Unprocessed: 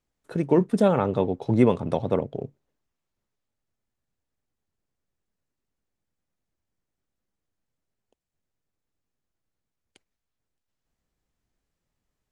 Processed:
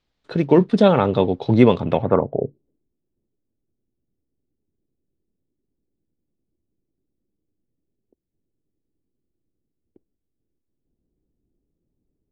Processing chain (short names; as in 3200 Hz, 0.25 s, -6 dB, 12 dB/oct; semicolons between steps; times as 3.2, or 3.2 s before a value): low-pass sweep 4000 Hz -> 340 Hz, 1.82–2.56; gain +5.5 dB